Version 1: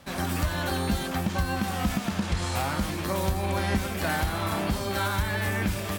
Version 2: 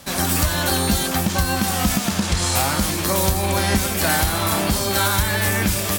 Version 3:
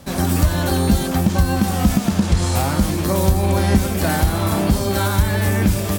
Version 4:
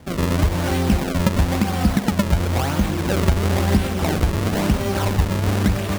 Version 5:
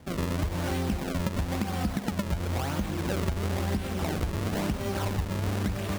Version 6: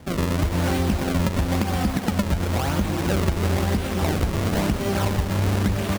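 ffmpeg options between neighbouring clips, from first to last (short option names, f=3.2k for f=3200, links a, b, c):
-af "bass=f=250:g=-1,treble=f=4k:g=10,volume=7dB"
-af "tiltshelf=f=760:g=6"
-af "acrusher=samples=33:mix=1:aa=0.000001:lfo=1:lforange=52.8:lforate=0.98,volume=-2dB"
-af "acompressor=threshold=-19dB:ratio=4,volume=-6.5dB"
-af "aecho=1:1:348:0.335,volume=6.5dB"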